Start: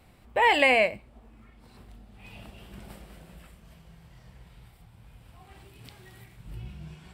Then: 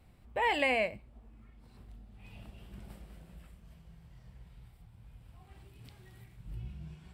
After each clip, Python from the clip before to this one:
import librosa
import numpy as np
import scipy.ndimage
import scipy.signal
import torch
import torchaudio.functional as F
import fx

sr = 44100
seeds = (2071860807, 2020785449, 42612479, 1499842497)

y = fx.low_shelf(x, sr, hz=200.0, db=8.5)
y = F.gain(torch.from_numpy(y), -9.0).numpy()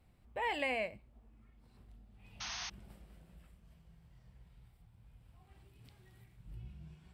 y = fx.spec_paint(x, sr, seeds[0], shape='noise', start_s=2.4, length_s=0.3, low_hz=660.0, high_hz=6600.0, level_db=-36.0)
y = F.gain(torch.from_numpy(y), -6.5).numpy()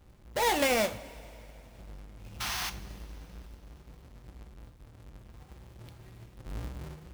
y = fx.halfwave_hold(x, sr)
y = fx.rev_double_slope(y, sr, seeds[1], early_s=0.35, late_s=3.2, knee_db=-17, drr_db=9.0)
y = F.gain(torch.from_numpy(y), 4.5).numpy()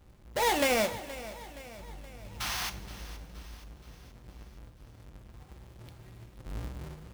y = fx.echo_feedback(x, sr, ms=472, feedback_pct=55, wet_db=-16.0)